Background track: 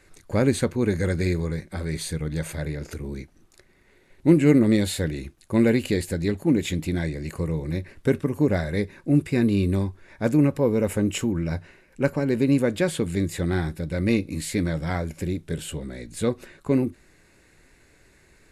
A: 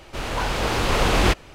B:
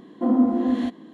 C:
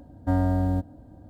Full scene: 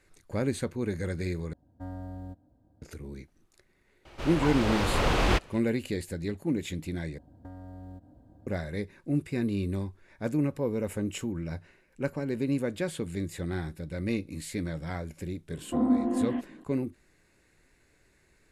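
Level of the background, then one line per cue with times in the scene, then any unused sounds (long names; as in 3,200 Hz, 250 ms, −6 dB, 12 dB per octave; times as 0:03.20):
background track −8.5 dB
0:01.53: overwrite with C −16.5 dB
0:04.05: mix in A −5.5 dB + high-shelf EQ 5,600 Hz −6.5 dB
0:07.18: overwrite with C −8 dB + downward compressor 12 to 1, threshold −32 dBFS
0:15.51: mix in B −5 dB + Chebyshev low-pass filter 2,800 Hz, order 4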